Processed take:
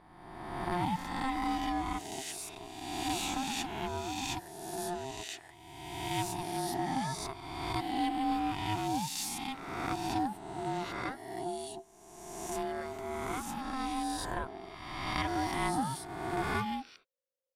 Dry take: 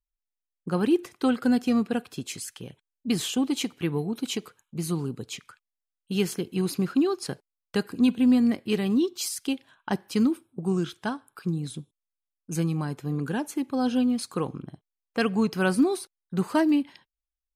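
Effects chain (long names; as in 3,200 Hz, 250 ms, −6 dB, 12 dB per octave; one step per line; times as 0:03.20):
peak hold with a rise ahead of every peak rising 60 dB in 1.50 s
parametric band 300 Hz −6 dB 0.52 octaves
ring modulation 530 Hz
in parallel at −10 dB: asymmetric clip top −31 dBFS
on the sum: level −8.5 dB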